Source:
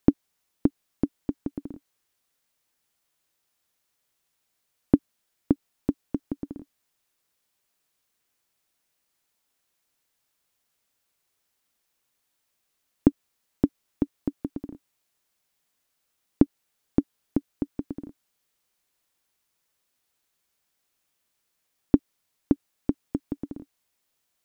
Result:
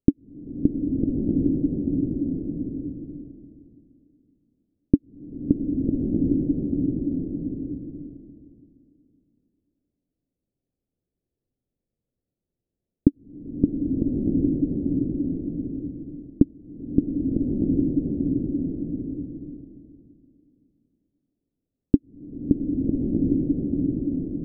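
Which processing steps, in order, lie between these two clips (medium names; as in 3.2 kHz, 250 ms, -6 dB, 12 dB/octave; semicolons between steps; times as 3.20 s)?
Gaussian low-pass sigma 21 samples; swelling reverb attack 1330 ms, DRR -3.5 dB; trim +4.5 dB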